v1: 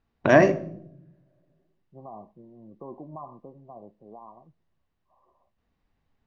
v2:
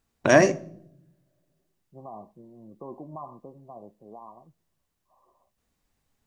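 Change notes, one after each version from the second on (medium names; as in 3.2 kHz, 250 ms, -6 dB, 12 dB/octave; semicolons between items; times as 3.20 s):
first voice: send -6.5 dB; master: remove distance through air 240 m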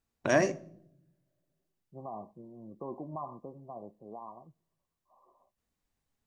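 first voice -8.5 dB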